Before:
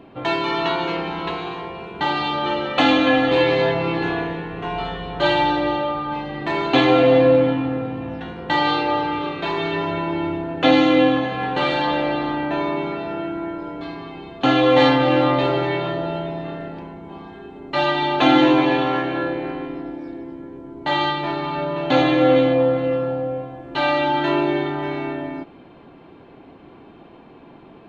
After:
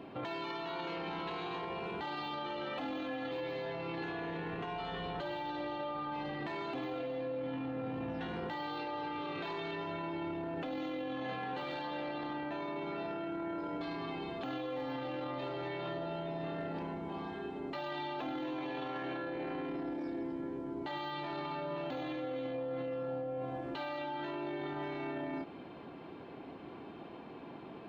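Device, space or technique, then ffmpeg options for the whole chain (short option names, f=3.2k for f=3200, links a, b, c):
broadcast voice chain: -filter_complex "[0:a]highpass=f=110:p=1,deesser=0.85,acompressor=threshold=-28dB:ratio=6,equalizer=f=5k:t=o:w=0.28:g=3.5,alimiter=level_in=5dB:limit=-24dB:level=0:latency=1:release=11,volume=-5dB,asettb=1/sr,asplit=3[a][b][c];[a]atrim=end=24.034[d];[b]atrim=start=24.03:end=24.67,asetpts=PTS-STARTPTS,afade=t=in:d=0.004:c=qsin,afade=t=out:st=0.636:d=0.004:c=qsin,highshelf=f=4.8k:g=-5[e];[c]atrim=start=24.666[f];[d][e]acrossfade=d=0.004:c1=hsin:c2=qsin[g];[g][f]acrossfade=d=0.004:c1=qsin:c2=hsin,volume=-3dB"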